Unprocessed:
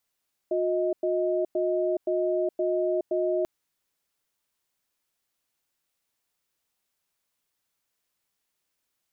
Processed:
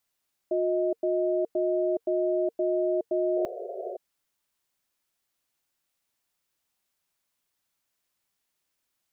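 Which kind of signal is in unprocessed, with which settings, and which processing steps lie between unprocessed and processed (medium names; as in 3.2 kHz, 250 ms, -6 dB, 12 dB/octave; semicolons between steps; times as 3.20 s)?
cadence 360 Hz, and 628 Hz, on 0.42 s, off 0.10 s, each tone -25.5 dBFS 2.94 s
band-stop 460 Hz, Q 12; painted sound noise, 3.36–3.97 s, 360–730 Hz -36 dBFS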